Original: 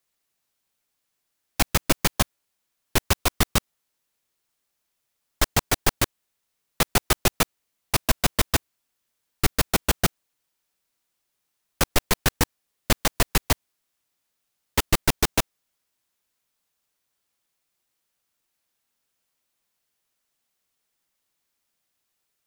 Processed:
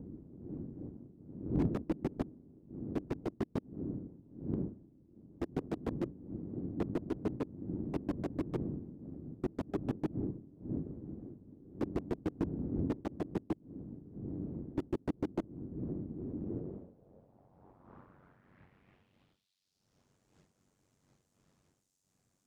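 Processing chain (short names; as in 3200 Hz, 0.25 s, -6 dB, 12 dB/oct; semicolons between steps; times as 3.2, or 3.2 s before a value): wind noise 110 Hz -28 dBFS; in parallel at 0 dB: compressor, threshold -35 dBFS, peak gain reduction 23 dB; on the sum: ring modulator 47 Hz; band-pass sweep 310 Hz -> 6900 Hz, 16.37–20.17; slew limiter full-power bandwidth 15 Hz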